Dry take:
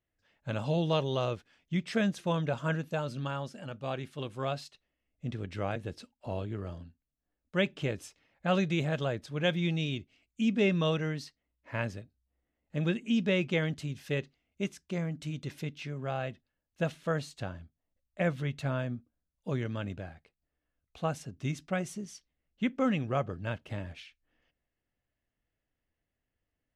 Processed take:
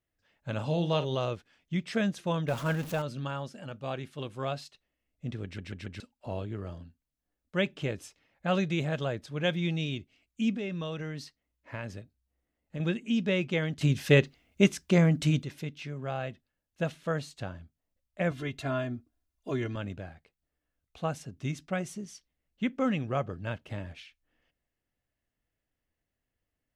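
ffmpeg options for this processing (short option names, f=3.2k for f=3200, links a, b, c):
-filter_complex "[0:a]asettb=1/sr,asplit=3[a][b][c];[a]atrim=end=0.524[d];[b]atrim=start=0.52:end=1.15,asetpts=PTS-STARTPTS,afade=t=in:d=0.004:c=qsin,afade=t=out:st=0.626:d=0.004:c=qsin,asplit=2[e][f];[f]adelay=46,volume=-11dB[g];[e][g]amix=inputs=2:normalize=0,atrim=end_sample=27783[h];[c]atrim=start=1.146[i];[d][h]acrossfade=d=0.004:c1=hsin:c2=qsin[j];[j][i]acrossfade=d=0.004:c1=qsin:c2=hsin,asettb=1/sr,asplit=3[k][l][m];[k]atrim=end=2.484[n];[l]atrim=start=2.48:end=3.02,asetpts=PTS-STARTPTS,afade=t=in:d=0.004:c=qsin,afade=t=out:st=0.536:d=0.004:c=qsin,aeval=exprs='val(0)+0.5*0.0141*sgn(val(0))':c=same[o];[m]atrim=start=3.016[p];[n][o]acrossfade=d=0.004:c1=hsin:c2=qsin[q];[q][p]acrossfade=d=0.004:c1=qsin:c2=hsin,asettb=1/sr,asplit=3[r][s][t];[r]atrim=end=10.544[u];[s]atrim=start=10.54:end=12.8,asetpts=PTS-STARTPTS,afade=t=in:d=0.004:c=qsin,afade=t=out:st=2.256:d=0.004:c=qsin,acompressor=threshold=-33dB:ratio=4:attack=3.2:release=140:knee=1:detection=peak[v];[t]atrim=start=12.796[w];[u][v]acrossfade=d=0.004:c1=hsin:c2=qsin[x];[x][w]acrossfade=d=0.004:c1=qsin:c2=hsin,asettb=1/sr,asplit=3[y][z][aa];[y]atrim=end=18.314[ab];[z]atrim=start=18.31:end=19.76,asetpts=PTS-STARTPTS,afade=t=in:d=0.004:c=qsin,afade=t=out:st=1.446:d=0.004:c=qsin,aecho=1:1:2.9:0.95,atrim=end_sample=63945[ac];[aa]atrim=start=19.756[ad];[ab][ac]acrossfade=d=0.004:c1=hsin:c2=qsin[ae];[ae][ad]acrossfade=d=0.004:c1=qsin:c2=hsin,asplit=7[af][ag][ah][ai][aj][ak][al];[af]atrim=end=5.582[am];[ag]atrim=start=5.438:end=5.582[an];[ah]atrim=start=5.438:end=5.582[ao];[ai]atrim=start=5.438:end=5.582[ap];[aj]atrim=start=5.998:end=13.812[aq];[ak]atrim=start=13.808:end=15.432,asetpts=PTS-STARTPTS,volume=11.5dB[ar];[al]atrim=start=15.428[as];[am][an]acrossfade=d=0.004:c1=hsin:c2=hsin[at];[at][ao]acrossfade=d=0.004:c1=hsin:c2=hsin[au];[au][ap]acrossfade=d=0.004:c1=hsin:c2=hsin[av];[av][aq]acrossfade=d=0.004:c1=hsin:c2=hsin[aw];[aw][ar]acrossfade=d=0.004:c1=hsin:c2=hsin[ax];[ax][as]acrossfade=d=0.004:c1=hsin:c2=hsin"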